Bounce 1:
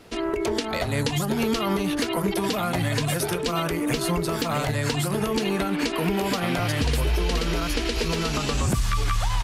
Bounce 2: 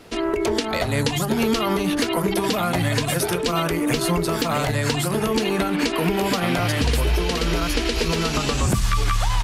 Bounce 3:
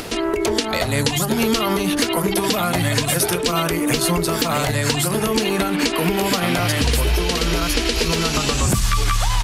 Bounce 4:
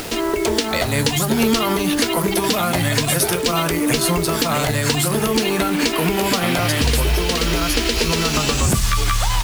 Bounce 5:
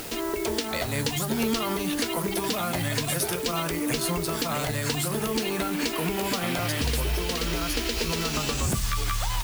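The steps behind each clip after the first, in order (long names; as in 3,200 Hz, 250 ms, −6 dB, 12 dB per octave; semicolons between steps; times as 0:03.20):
mains-hum notches 50/100/150/200 Hz; level +3.5 dB
high-shelf EQ 3,800 Hz +6 dB; upward compression, threshold −22 dBFS; level +1.5 dB
tuned comb filter 76 Hz, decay 0.19 s, harmonics all, mix 50%; bit-depth reduction 6 bits, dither none; level +4 dB
background noise blue −33 dBFS; level −9 dB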